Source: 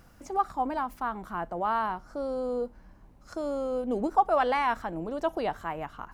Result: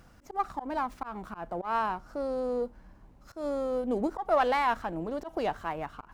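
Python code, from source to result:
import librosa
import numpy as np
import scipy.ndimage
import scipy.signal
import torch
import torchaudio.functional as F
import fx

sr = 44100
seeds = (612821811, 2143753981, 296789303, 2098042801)

y = fx.auto_swell(x, sr, attack_ms=136.0)
y = fx.running_max(y, sr, window=3)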